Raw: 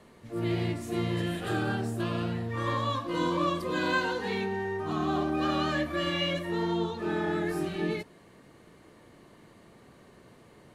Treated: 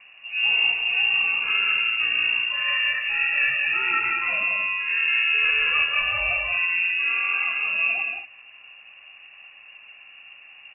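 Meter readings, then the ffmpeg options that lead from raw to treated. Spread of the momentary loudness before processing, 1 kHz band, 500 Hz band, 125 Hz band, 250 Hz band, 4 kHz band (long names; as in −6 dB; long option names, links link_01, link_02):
4 LU, −1.0 dB, −13.0 dB, below −15 dB, below −20 dB, +12.5 dB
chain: -af "lowshelf=frequency=210:gain=11,aecho=1:1:180.8|230.3:0.562|0.316,lowpass=frequency=2500:width_type=q:width=0.5098,lowpass=frequency=2500:width_type=q:width=0.6013,lowpass=frequency=2500:width_type=q:width=0.9,lowpass=frequency=2500:width_type=q:width=2.563,afreqshift=-2900,volume=2dB"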